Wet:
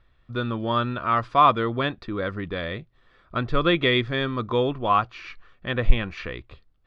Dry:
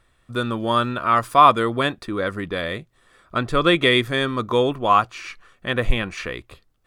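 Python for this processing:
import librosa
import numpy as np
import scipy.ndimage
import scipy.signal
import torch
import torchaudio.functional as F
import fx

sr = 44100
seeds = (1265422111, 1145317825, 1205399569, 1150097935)

y = scipy.signal.sosfilt(scipy.signal.butter(4, 4600.0, 'lowpass', fs=sr, output='sos'), x)
y = fx.low_shelf(y, sr, hz=120.0, db=8.5)
y = y * 10.0 ** (-4.5 / 20.0)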